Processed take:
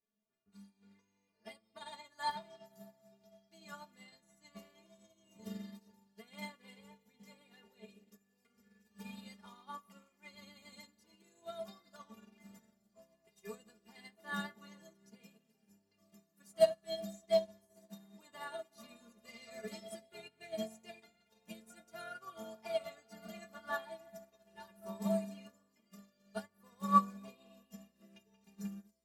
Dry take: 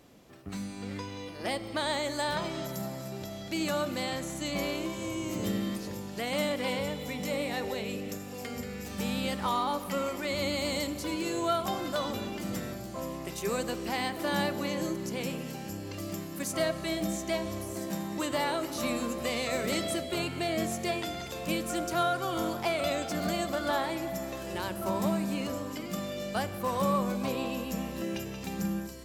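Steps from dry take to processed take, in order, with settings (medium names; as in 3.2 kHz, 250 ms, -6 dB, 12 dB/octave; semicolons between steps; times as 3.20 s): inharmonic resonator 210 Hz, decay 0.23 s, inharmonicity 0.008; upward expansion 2.5:1, over -53 dBFS; trim +11 dB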